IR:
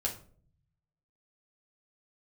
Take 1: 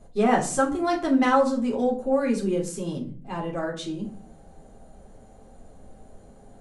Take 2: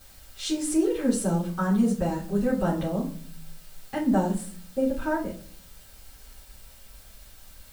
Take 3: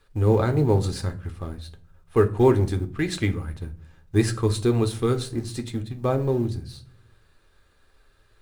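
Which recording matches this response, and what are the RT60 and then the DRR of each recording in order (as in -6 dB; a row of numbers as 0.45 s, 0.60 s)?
1; 0.50 s, 0.50 s, 0.50 s; -2.5 dB, -6.5 dB, 6.5 dB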